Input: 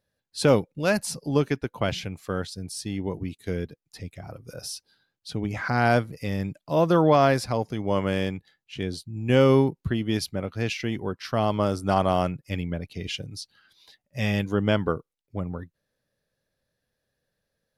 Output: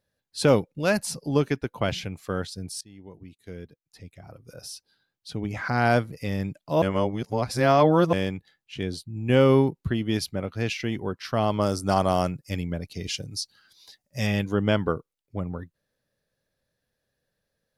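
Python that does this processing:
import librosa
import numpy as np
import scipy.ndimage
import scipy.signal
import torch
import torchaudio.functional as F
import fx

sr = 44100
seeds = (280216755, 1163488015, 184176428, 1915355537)

y = fx.peak_eq(x, sr, hz=6000.0, db=-6.5, octaves=0.66, at=(9.02, 9.64))
y = fx.high_shelf_res(y, sr, hz=4000.0, db=6.0, q=1.5, at=(11.61, 14.27))
y = fx.edit(y, sr, fx.fade_in_from(start_s=2.81, length_s=3.21, floor_db=-20.0),
    fx.reverse_span(start_s=6.82, length_s=1.31), tone=tone)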